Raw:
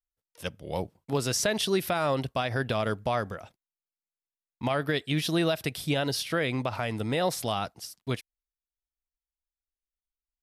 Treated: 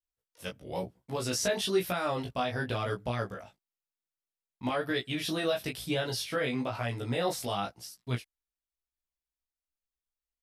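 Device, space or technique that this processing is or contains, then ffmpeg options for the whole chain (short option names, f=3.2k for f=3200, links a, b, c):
double-tracked vocal: -filter_complex "[0:a]asplit=2[a][b];[b]adelay=16,volume=-3dB[c];[a][c]amix=inputs=2:normalize=0,flanger=delay=16.5:depth=4:speed=1,volume=-2dB"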